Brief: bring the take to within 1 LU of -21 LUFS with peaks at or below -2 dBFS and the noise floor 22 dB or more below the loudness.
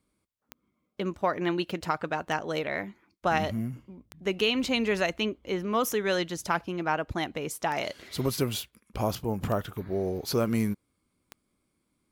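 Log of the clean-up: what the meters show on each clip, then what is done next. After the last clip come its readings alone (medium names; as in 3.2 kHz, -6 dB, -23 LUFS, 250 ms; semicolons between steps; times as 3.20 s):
clicks found 7; loudness -30.0 LUFS; peak level -12.0 dBFS; loudness target -21.0 LUFS
-> de-click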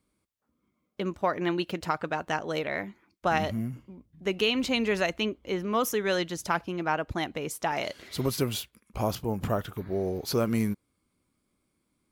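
clicks found 1; loudness -30.0 LUFS; peak level -12.0 dBFS; loudness target -21.0 LUFS
-> trim +9 dB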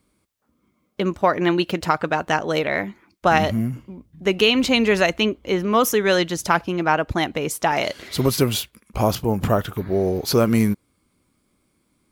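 loudness -21.0 LUFS; peak level -3.0 dBFS; noise floor -68 dBFS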